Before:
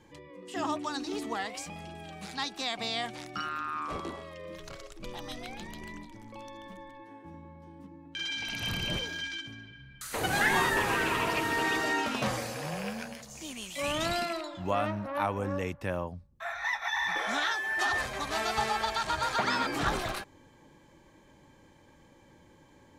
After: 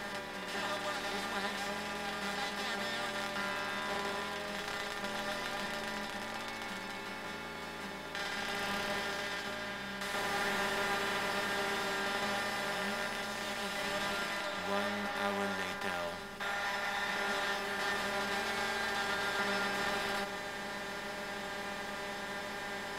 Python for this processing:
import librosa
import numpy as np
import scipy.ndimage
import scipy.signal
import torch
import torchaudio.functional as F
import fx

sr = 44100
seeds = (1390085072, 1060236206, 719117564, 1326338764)

y = fx.bin_compress(x, sr, power=0.2)
y = fx.low_shelf(y, sr, hz=79.0, db=-5.5)
y = fx.comb_fb(y, sr, f0_hz=200.0, decay_s=0.17, harmonics='all', damping=0.0, mix_pct=90)
y = y * librosa.db_to_amplitude(-6.0)